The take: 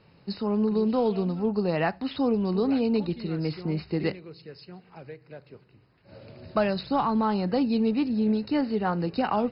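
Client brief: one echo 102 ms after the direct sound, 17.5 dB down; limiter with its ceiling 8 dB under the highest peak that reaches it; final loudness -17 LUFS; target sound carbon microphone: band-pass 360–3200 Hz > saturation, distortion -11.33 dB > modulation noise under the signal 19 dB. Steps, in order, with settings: peak limiter -20 dBFS; band-pass 360–3200 Hz; delay 102 ms -17.5 dB; saturation -31.5 dBFS; modulation noise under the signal 19 dB; trim +20.5 dB

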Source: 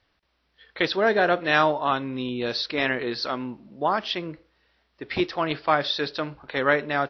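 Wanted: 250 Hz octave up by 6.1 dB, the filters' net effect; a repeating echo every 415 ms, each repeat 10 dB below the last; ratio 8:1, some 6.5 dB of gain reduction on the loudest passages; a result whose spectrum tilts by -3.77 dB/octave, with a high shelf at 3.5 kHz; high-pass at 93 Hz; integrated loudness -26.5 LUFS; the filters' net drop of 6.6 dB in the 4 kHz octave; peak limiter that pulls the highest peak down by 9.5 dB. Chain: high-pass 93 Hz; peaking EQ 250 Hz +8 dB; treble shelf 3.5 kHz -4.5 dB; peaking EQ 4 kHz -5 dB; compression 8:1, threshold -21 dBFS; peak limiter -21 dBFS; feedback delay 415 ms, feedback 32%, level -10 dB; trim +4.5 dB

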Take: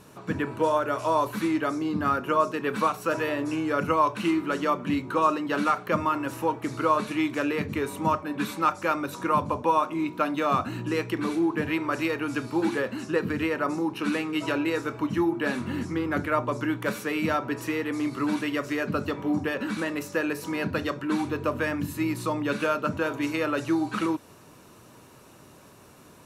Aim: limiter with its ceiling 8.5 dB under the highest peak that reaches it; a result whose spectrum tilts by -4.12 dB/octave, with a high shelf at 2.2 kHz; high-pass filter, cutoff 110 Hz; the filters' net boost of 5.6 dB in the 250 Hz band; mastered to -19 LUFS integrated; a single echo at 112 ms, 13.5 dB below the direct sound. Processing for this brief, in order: high-pass 110 Hz; peaking EQ 250 Hz +8 dB; treble shelf 2.2 kHz -7.5 dB; peak limiter -18 dBFS; delay 112 ms -13.5 dB; trim +7.5 dB

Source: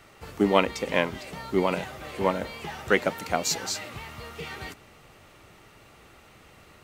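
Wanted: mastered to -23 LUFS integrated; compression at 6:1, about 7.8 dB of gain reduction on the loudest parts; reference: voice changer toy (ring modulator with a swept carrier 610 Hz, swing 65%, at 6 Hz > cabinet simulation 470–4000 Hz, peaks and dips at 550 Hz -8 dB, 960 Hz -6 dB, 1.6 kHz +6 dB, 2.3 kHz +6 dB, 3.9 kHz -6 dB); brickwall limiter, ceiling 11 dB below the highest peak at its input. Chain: compression 6:1, threshold -24 dBFS; peak limiter -21.5 dBFS; ring modulator with a swept carrier 610 Hz, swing 65%, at 6 Hz; cabinet simulation 470–4000 Hz, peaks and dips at 550 Hz -8 dB, 960 Hz -6 dB, 1.6 kHz +6 dB, 2.3 kHz +6 dB, 3.9 kHz -6 dB; trim +16.5 dB

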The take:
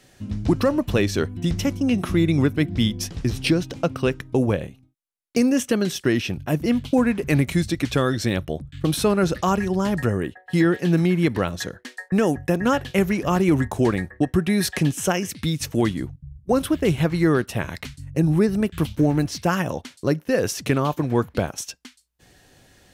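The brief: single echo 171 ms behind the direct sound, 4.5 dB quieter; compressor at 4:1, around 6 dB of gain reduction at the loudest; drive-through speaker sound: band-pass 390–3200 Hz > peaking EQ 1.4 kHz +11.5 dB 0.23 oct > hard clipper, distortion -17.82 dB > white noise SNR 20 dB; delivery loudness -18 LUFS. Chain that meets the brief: compression 4:1, threshold -21 dBFS; band-pass 390–3200 Hz; peaking EQ 1.4 kHz +11.5 dB 0.23 oct; delay 171 ms -4.5 dB; hard clipper -19 dBFS; white noise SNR 20 dB; trim +11.5 dB

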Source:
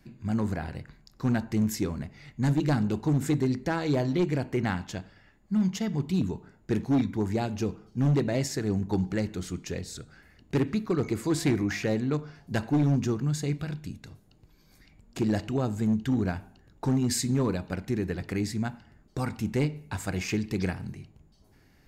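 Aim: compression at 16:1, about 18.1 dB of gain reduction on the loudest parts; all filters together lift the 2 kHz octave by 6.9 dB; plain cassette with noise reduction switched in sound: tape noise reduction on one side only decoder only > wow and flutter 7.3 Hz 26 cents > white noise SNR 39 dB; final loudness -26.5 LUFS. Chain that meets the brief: peaking EQ 2 kHz +8.5 dB; compression 16:1, threshold -39 dBFS; tape noise reduction on one side only decoder only; wow and flutter 7.3 Hz 26 cents; white noise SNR 39 dB; trim +17.5 dB

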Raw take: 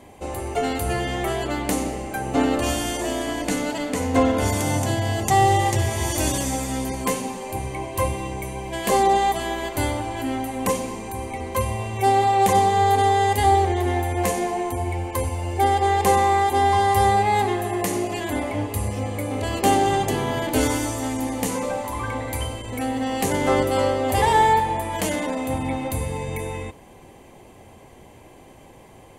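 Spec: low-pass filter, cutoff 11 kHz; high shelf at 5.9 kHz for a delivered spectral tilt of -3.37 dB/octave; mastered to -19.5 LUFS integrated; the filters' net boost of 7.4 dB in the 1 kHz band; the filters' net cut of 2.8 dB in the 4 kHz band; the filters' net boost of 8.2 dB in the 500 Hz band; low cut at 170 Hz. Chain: high-pass 170 Hz; low-pass 11 kHz; peaking EQ 500 Hz +9 dB; peaking EQ 1 kHz +6 dB; peaking EQ 4 kHz -6.5 dB; treble shelf 5.9 kHz +6 dB; trim -3 dB

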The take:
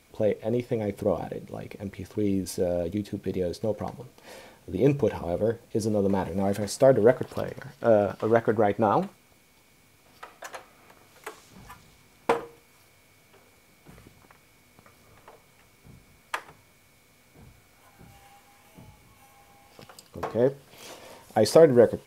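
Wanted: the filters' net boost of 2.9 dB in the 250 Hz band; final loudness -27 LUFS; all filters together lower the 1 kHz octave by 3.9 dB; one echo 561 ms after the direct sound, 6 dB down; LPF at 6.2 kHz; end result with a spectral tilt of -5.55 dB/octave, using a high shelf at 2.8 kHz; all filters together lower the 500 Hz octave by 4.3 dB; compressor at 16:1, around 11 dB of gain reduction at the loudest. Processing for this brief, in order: low-pass 6.2 kHz; peaking EQ 250 Hz +5.5 dB; peaking EQ 500 Hz -5.5 dB; peaking EQ 1 kHz -4.5 dB; treble shelf 2.8 kHz +8 dB; compression 16:1, threshold -25 dBFS; delay 561 ms -6 dB; trim +6 dB

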